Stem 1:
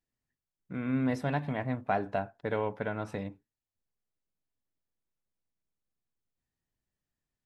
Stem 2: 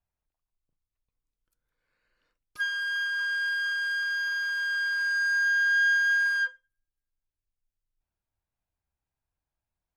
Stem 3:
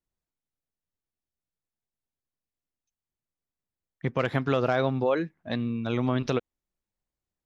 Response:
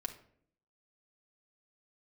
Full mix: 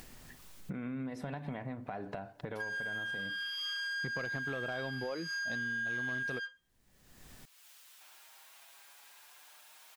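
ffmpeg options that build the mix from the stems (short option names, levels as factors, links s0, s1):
-filter_complex "[0:a]acompressor=threshold=0.00562:ratio=2,alimiter=level_in=6.31:limit=0.0631:level=0:latency=1:release=483,volume=0.158,acontrast=38,volume=0.562,asplit=3[s0][s1][s2];[s1]volume=0.376[s3];[1:a]highpass=1000,equalizer=f=3300:t=o:w=0.77:g=3,asplit=2[s4][s5];[s5]adelay=6.2,afreqshift=0.63[s6];[s4][s6]amix=inputs=2:normalize=1,volume=1.19[s7];[2:a]volume=0.708[s8];[s2]apad=whole_len=439668[s9];[s7][s9]sidechaincompress=threshold=0.00141:ratio=8:attack=9.6:release=818[s10];[3:a]atrim=start_sample=2205[s11];[s3][s11]afir=irnorm=-1:irlink=0[s12];[s0][s10][s8][s12]amix=inputs=4:normalize=0,acompressor=mode=upward:threshold=0.0398:ratio=2.5,asoftclip=type=tanh:threshold=0.133,acompressor=threshold=0.0178:ratio=8"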